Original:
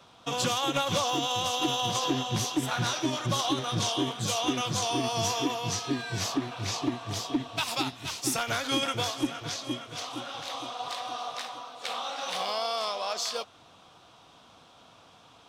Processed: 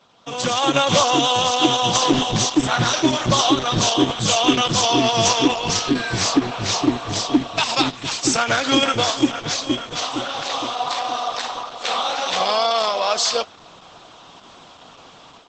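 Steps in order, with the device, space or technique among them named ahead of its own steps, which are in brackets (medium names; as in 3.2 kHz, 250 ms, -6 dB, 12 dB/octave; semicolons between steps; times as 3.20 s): 4.13–5.95 s: dynamic bell 3 kHz, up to +4 dB, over -48 dBFS, Q 4; video call (high-pass 130 Hz 12 dB/octave; level rider gain up to 13 dB; Opus 12 kbps 48 kHz)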